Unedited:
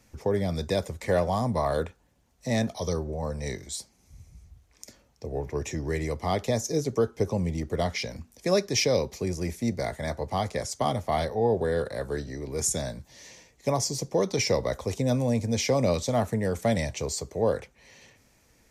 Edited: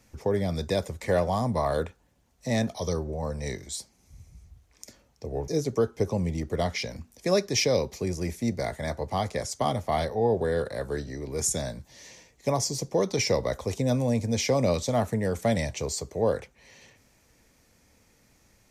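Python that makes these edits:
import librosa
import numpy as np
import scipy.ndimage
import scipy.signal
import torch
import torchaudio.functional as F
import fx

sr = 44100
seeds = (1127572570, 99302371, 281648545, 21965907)

y = fx.edit(x, sr, fx.cut(start_s=5.48, length_s=1.2), tone=tone)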